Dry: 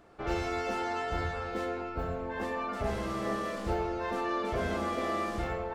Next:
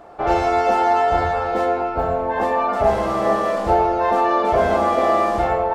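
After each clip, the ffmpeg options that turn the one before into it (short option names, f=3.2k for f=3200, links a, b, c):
-af "equalizer=f=750:w=1.1:g=13.5,volume=7dB"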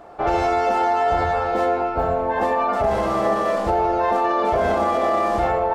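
-af "alimiter=limit=-11.5dB:level=0:latency=1:release=26"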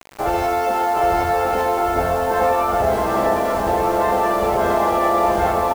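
-af "aecho=1:1:760|1254|1575|1784|1919:0.631|0.398|0.251|0.158|0.1,acrusher=bits=5:mix=0:aa=0.000001"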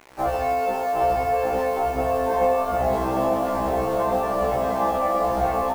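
-filter_complex "[0:a]acrossover=split=2100[a][b];[b]asoftclip=type=tanh:threshold=-36.5dB[c];[a][c]amix=inputs=2:normalize=0,afftfilt=real='re*1.73*eq(mod(b,3),0)':imag='im*1.73*eq(mod(b,3),0)':win_size=2048:overlap=0.75,volume=-1.5dB"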